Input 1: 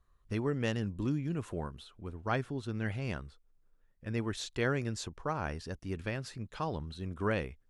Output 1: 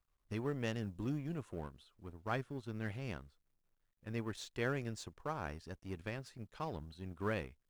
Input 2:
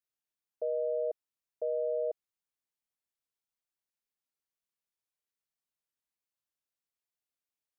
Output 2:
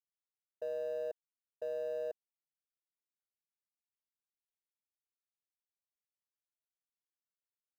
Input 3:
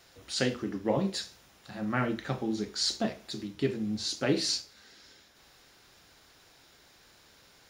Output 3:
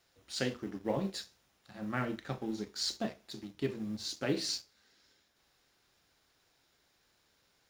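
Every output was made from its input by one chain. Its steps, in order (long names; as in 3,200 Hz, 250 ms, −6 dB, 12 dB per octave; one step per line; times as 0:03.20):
mu-law and A-law mismatch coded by A
level −4.5 dB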